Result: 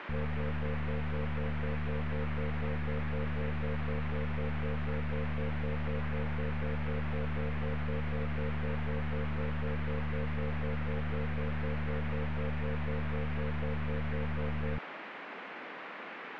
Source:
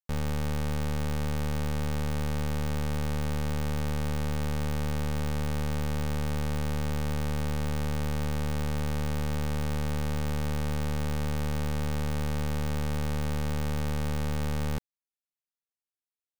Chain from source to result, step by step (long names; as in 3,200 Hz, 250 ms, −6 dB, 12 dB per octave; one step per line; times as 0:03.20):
auto-filter low-pass square 4 Hz 480–3,500 Hz
gate on every frequency bin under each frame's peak −15 dB strong
noise in a band 200–2,300 Hz −40 dBFS
level −4.5 dB